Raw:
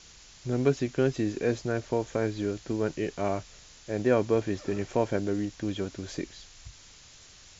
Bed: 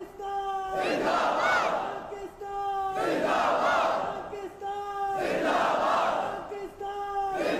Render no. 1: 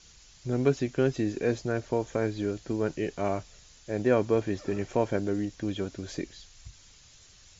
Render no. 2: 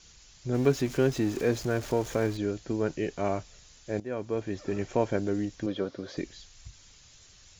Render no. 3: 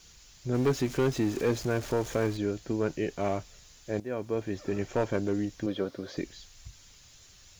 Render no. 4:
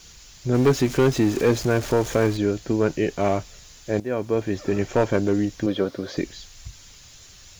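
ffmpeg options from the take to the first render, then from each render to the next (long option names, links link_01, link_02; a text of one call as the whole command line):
ffmpeg -i in.wav -af "afftdn=noise_reduction=6:noise_floor=-53" out.wav
ffmpeg -i in.wav -filter_complex "[0:a]asettb=1/sr,asplit=3[link_01][link_02][link_03];[link_01]atrim=end=0.544[link_04];[link_02]atrim=start=0.54:end=2.37,asetpts=PTS-STARTPTS,afade=type=in:duration=0.004:curve=qsin,afade=type=out:start_time=1.826:duration=0.004:curve=qsin,aeval=exprs='val(0)+0.5*0.0126*sgn(val(0))':channel_layout=same[link_05];[link_03]atrim=start=2.366[link_06];[link_04][link_05]acrossfade=duration=0.004:curve1=hsin:curve2=qsin[link_07];[link_07][link_06]acrossfade=duration=0.004:curve1=qsin:curve2=hsin,asettb=1/sr,asplit=3[link_08][link_09][link_10];[link_08]atrim=end=5.664[link_11];[link_09]atrim=start=5.66:end=6.17,asetpts=PTS-STARTPTS,afade=type=in:duration=0.004:curve=qsin,afade=type=out:start_time=0.506:duration=0.004:curve=qsin,highpass=150,equalizer=frequency=520:width_type=q:width=4:gain=9,equalizer=frequency=1200:width_type=q:width=4:gain=6,equalizer=frequency=2600:width_type=q:width=4:gain=-7,lowpass=frequency=5100:width=0.5412,lowpass=frequency=5100:width=1.3066[link_12];[link_10]atrim=start=6.166[link_13];[link_11][link_12]acrossfade=duration=0.004:curve1=hsin:curve2=qsin[link_14];[link_14][link_13]acrossfade=duration=0.004:curve1=qsin:curve2=hsin,asplit=2[link_15][link_16];[link_15]atrim=end=4,asetpts=PTS-STARTPTS,afade=type=out:start_time=3.996:duration=0.004:curve=hsin:silence=0.149624[link_17];[link_16]atrim=start=4,asetpts=PTS-STARTPTS,afade=type=in:duration=0.8:silence=0.149624[link_18];[link_17][link_18]concat=n=2:v=0:a=1" out.wav
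ffmpeg -i in.wav -af "volume=19.5dB,asoftclip=hard,volume=-19.5dB,acrusher=bits=10:mix=0:aa=0.000001" out.wav
ffmpeg -i in.wav -af "volume=8dB" out.wav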